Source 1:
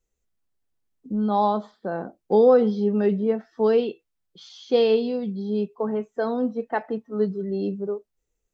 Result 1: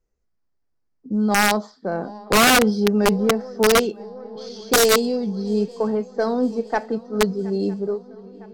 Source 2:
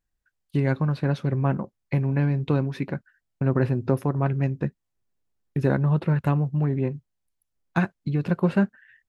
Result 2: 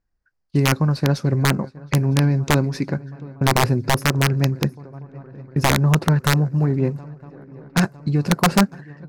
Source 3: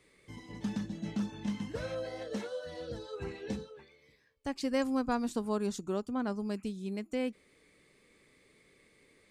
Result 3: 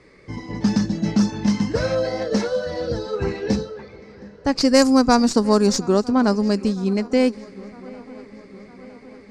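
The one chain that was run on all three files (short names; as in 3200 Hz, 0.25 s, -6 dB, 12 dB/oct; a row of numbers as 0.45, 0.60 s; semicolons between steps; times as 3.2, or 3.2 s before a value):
tracing distortion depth 0.06 ms; resonant high shelf 4100 Hz +6.5 dB, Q 3; swung echo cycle 0.958 s, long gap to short 3:1, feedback 60%, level -22.5 dB; wrapped overs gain 13 dB; low-pass opened by the level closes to 2200 Hz, open at -22.5 dBFS; match loudness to -20 LUFS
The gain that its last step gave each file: +3.5, +5.0, +16.0 dB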